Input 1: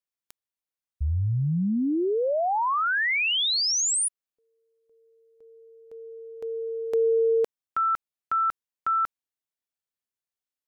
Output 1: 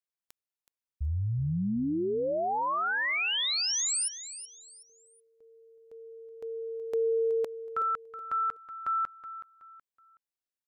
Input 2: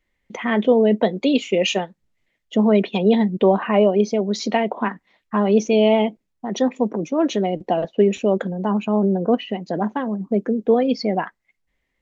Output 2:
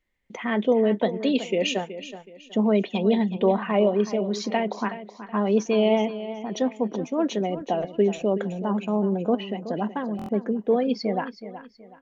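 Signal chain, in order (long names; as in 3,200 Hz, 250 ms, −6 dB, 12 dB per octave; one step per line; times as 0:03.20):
repeating echo 373 ms, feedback 32%, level −13 dB
buffer that repeats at 0:10.17, samples 1,024, times 4
level −5 dB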